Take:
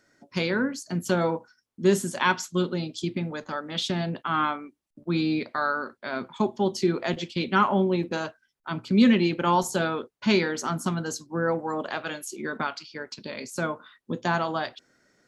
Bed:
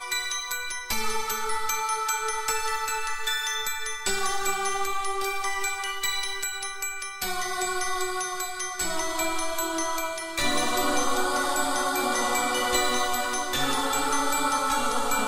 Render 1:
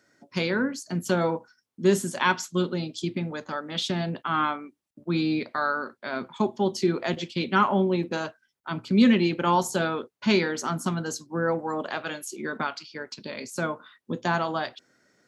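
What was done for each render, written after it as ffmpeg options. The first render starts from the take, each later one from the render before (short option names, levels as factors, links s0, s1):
-af "highpass=82"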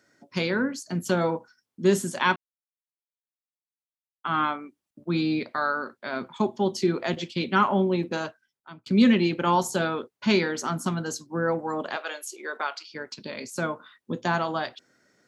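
-filter_complex "[0:a]asettb=1/sr,asplit=3[s0][s1][s2];[s0]atrim=end=11.964[s3];[s1]atrim=start=11.96:end=12.88,asetpts=PTS-STARTPTS,afade=t=in:d=0.004:c=qsin,afade=t=out:st=0.916:d=0.004:c=qsin,highpass=f=420:w=0.5412,highpass=f=420:w=1.3066[s4];[s2]atrim=start=12.876[s5];[s3][s4]acrossfade=d=0.004:c1=hsin:c2=qsin[s6];[s6][s5]acrossfade=d=0.004:c1=qsin:c2=hsin,asplit=4[s7][s8][s9][s10];[s7]atrim=end=2.36,asetpts=PTS-STARTPTS,afade=t=out:st=2.356:d=0.004:c=hsin[s11];[s8]atrim=start=2.36:end=4.24,asetpts=PTS-STARTPTS,volume=0[s12];[s9]atrim=start=4.24:end=8.86,asetpts=PTS-STARTPTS,afade=t=in:d=0.004:c=hsin,afade=t=out:st=4.01:d=0.61[s13];[s10]atrim=start=8.86,asetpts=PTS-STARTPTS,afade=t=in:d=0.004:c=hsin[s14];[s11][s12][s13][s14]concat=n=4:v=0:a=1"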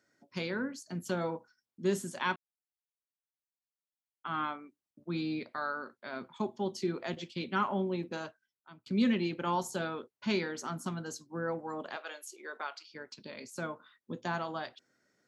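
-af "volume=0.335"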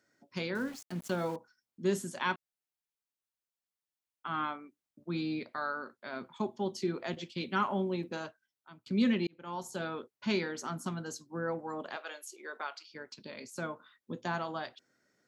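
-filter_complex "[0:a]asettb=1/sr,asplit=3[s0][s1][s2];[s0]atrim=end=0.554[s3];[s1]atrim=start=0.55:end=1.36,asetpts=PTS-STARTPTS,afade=t=in:d=0.004:c=qsin,afade=t=out:st=0.806:d=0.004:c=qsin,aeval=exprs='val(0)*gte(abs(val(0)),0.00501)':c=same[s4];[s2]atrim=start=1.356[s5];[s3][s4]acrossfade=d=0.004:c1=hsin:c2=qsin[s6];[s6][s5]acrossfade=d=0.004:c1=qsin:c2=hsin,asettb=1/sr,asplit=3[s7][s8][s9];[s7]atrim=end=7.384[s10];[s8]atrim=start=7.38:end=8.11,asetpts=PTS-STARTPTS,afade=t=in:d=0.004:c=qsin,afade=t=out:st=0.726:d=0.004:c=qsin,highshelf=f=5600:g=5.5[s11];[s9]atrim=start=8.106[s12];[s10][s11]acrossfade=d=0.004:c1=hsin:c2=qsin[s13];[s13][s12]acrossfade=d=0.004:c1=qsin:c2=hsin,asplit=2[s14][s15];[s14]atrim=end=9.27,asetpts=PTS-STARTPTS,afade=t=out:st=9.266:d=0.004:c=hsin[s16];[s15]atrim=start=9.27,asetpts=PTS-STARTPTS,afade=t=in:d=0.69[s17];[s16][s17]concat=n=2:v=0:a=1"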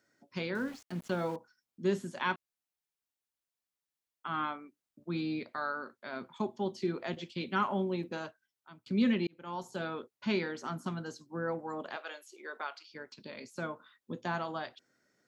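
-filter_complex "[0:a]acrossover=split=4500[s0][s1];[s1]acompressor=threshold=0.00141:ratio=4:attack=1:release=60[s2];[s0][s2]amix=inputs=2:normalize=0"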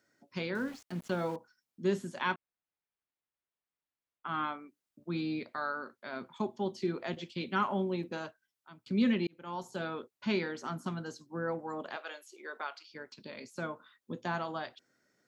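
-filter_complex "[0:a]asettb=1/sr,asplit=3[s0][s1][s2];[s0]atrim=end=2.344[s3];[s1]atrim=start=2.34:end=4.29,asetpts=PTS-STARTPTS,afade=t=in:d=0.004:c=qsin,afade=t=out:st=1.946:d=0.004:c=qsin,lowpass=2600[s4];[s2]atrim=start=4.286[s5];[s3][s4]acrossfade=d=0.004:c1=hsin:c2=qsin[s6];[s6][s5]acrossfade=d=0.004:c1=qsin:c2=hsin"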